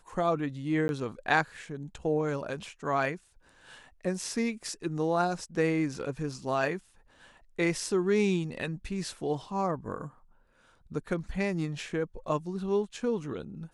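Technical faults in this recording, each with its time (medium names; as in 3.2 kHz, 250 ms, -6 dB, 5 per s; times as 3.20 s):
0.88–0.89 s: dropout 11 ms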